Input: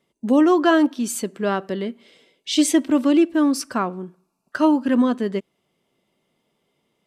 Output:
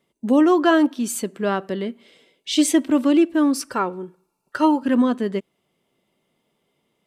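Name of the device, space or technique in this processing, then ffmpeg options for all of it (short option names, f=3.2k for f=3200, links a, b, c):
exciter from parts: -filter_complex "[0:a]asplit=2[a][b];[b]highpass=f=4.9k:w=0.5412,highpass=f=4.9k:w=1.3066,asoftclip=type=tanh:threshold=-24dB,volume=-12dB[c];[a][c]amix=inputs=2:normalize=0,asettb=1/sr,asplit=3[d][e][f];[d]atrim=end=3.684[g];[e]atrim=start=3.68:end=4.83,asetpts=PTS-STARTPTS,afade=t=in:d=0.004:c=qsin,afade=t=out:st=1.146:d=0.004:c=qsin,aecho=1:1:2.2:0.52,atrim=end_sample=50715[h];[f]atrim=start=4.826[i];[g][h]acrossfade=d=0.004:c1=hsin:c2=qsin[j];[j][i]acrossfade=d=0.004:c1=qsin:c2=hsin"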